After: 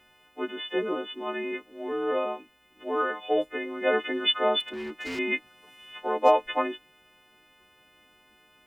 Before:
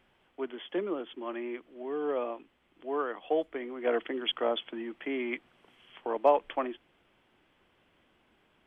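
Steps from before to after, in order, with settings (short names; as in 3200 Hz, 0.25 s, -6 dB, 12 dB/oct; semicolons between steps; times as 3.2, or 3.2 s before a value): frequency quantiser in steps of 3 st; 4.6–5.19 overloaded stage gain 35.5 dB; gain +4 dB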